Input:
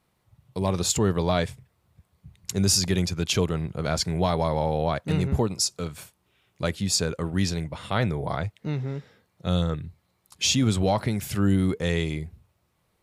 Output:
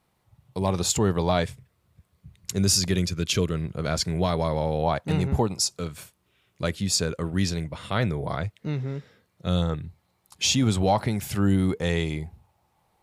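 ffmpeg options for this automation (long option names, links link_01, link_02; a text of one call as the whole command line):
ffmpeg -i in.wav -af "asetnsamples=nb_out_samples=441:pad=0,asendcmd='1.43 equalizer g -4.5;2.98 equalizer g -15;3.64 equalizer g -4.5;4.83 equalizer g 6;5.71 equalizer g -3.5;9.57 equalizer g 5;12.19 equalizer g 15',equalizer=frequency=820:width_type=o:width=0.4:gain=3.5" out.wav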